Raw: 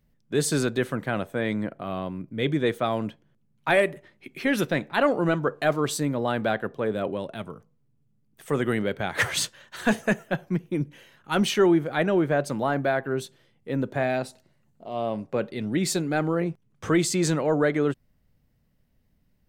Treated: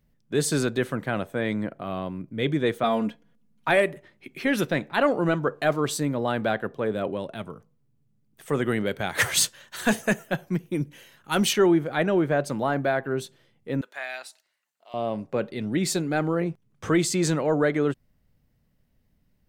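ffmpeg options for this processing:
ffmpeg -i in.wav -filter_complex "[0:a]asettb=1/sr,asplit=3[link_01][link_02][link_03];[link_01]atrim=end=2.834[link_04];[link_02]atrim=start=2.83:end=3.68,asetpts=PTS-STARTPTS,afade=type=in:duration=0.004:curve=qsin,afade=type=out:start_time=0.846:duration=0.004:curve=qsin,aecho=1:1:4.2:0.84,atrim=end_sample=37485[link_05];[link_03]atrim=start=3.676[link_06];[link_04][link_05]acrossfade=duration=0.004:curve1=hsin:curve2=qsin[link_07];[link_07][link_06]acrossfade=duration=0.004:curve1=qsin:curve2=hsin,asettb=1/sr,asplit=3[link_08][link_09][link_10];[link_08]atrim=end=8.864[link_11];[link_09]atrim=start=8.86:end=11.53,asetpts=PTS-STARTPTS,afade=type=in:duration=0.004:curve=qsin,afade=type=out:start_time=2.666:duration=0.004:curve=qsin,aemphasis=mode=production:type=cd[link_12];[link_10]atrim=start=11.526[link_13];[link_11][link_12]acrossfade=duration=0.004:curve1=hsin:curve2=qsin[link_14];[link_14][link_13]acrossfade=duration=0.004:curve1=qsin:curve2=hsin,asettb=1/sr,asplit=3[link_15][link_16][link_17];[link_15]atrim=end=13.814[link_18];[link_16]atrim=start=13.81:end=14.94,asetpts=PTS-STARTPTS,afade=type=in:duration=0.004:curve=qsin,afade=type=out:start_time=1.126:duration=0.004:curve=qsin,highpass=1400[link_19];[link_17]atrim=start=14.936[link_20];[link_18][link_19]acrossfade=duration=0.004:curve1=hsin:curve2=qsin[link_21];[link_21][link_20]acrossfade=duration=0.004:curve1=qsin:curve2=hsin" out.wav

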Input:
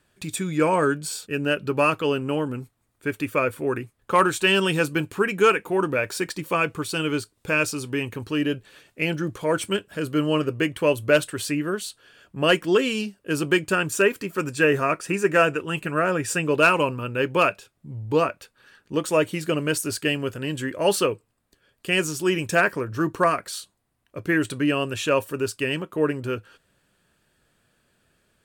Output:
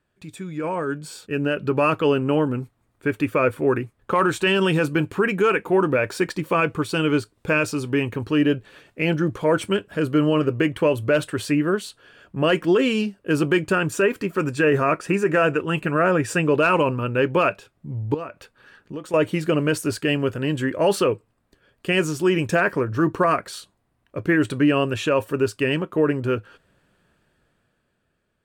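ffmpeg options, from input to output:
ffmpeg -i in.wav -filter_complex "[0:a]asettb=1/sr,asplit=3[link_01][link_02][link_03];[link_01]atrim=end=18.144[link_04];[link_02]atrim=start=18.14:end=19.14,asetpts=PTS-STARTPTS,afade=type=in:duration=0.004:curve=qsin,afade=type=out:start_time=0.996:duration=0.004:curve=qsin,acompressor=threshold=-38dB:ratio=3:attack=3.2:release=140:knee=1:detection=peak[link_05];[link_03]atrim=start=19.136[link_06];[link_04][link_05]acrossfade=duration=0.004:curve1=hsin:curve2=qsin[link_07];[link_07][link_06]acrossfade=duration=0.004:curve1=qsin:curve2=hsin,highshelf=frequency=3500:gain=-11.5,alimiter=limit=-15.5dB:level=0:latency=1:release=33,dynaudnorm=framelen=110:gausssize=21:maxgain=11.5dB,volume=-5.5dB" out.wav

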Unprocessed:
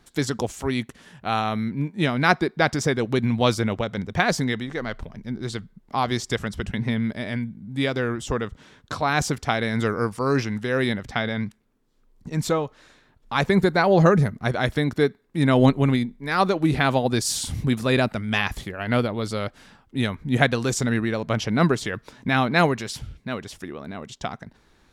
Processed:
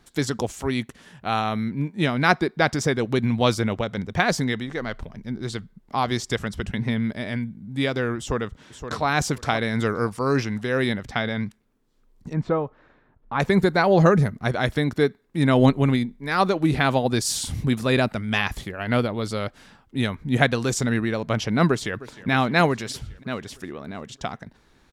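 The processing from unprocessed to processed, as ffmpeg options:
ffmpeg -i in.wav -filter_complex "[0:a]asplit=2[link_01][link_02];[link_02]afade=type=in:start_time=8.18:duration=0.01,afade=type=out:start_time=9.05:duration=0.01,aecho=0:1:520|1040|1560:0.334965|0.0669931|0.0133986[link_03];[link_01][link_03]amix=inputs=2:normalize=0,asettb=1/sr,asplit=3[link_04][link_05][link_06];[link_04]atrim=end=12.334[link_07];[link_05]atrim=start=12.33:end=13.4,asetpts=PTS-STARTPTS,afade=type=in:duration=0.004:curve=qsin,afade=type=out:start_time=1.066:duration=0.004:curve=qsin,lowpass=1500[link_08];[link_06]atrim=start=13.396[link_09];[link_07][link_08]acrossfade=duration=0.004:curve1=hsin:curve2=qsin[link_10];[link_10][link_09]acrossfade=duration=0.004:curve1=qsin:curve2=hsin,asplit=2[link_11][link_12];[link_12]afade=type=in:start_time=21.68:duration=0.01,afade=type=out:start_time=22.3:duration=0.01,aecho=0:1:310|620|930|1240|1550|1860|2170|2480:0.133352|0.0933465|0.0653426|0.0457398|0.0320178|0.0224125|0.0156887|0.0109821[link_13];[link_11][link_13]amix=inputs=2:normalize=0" out.wav

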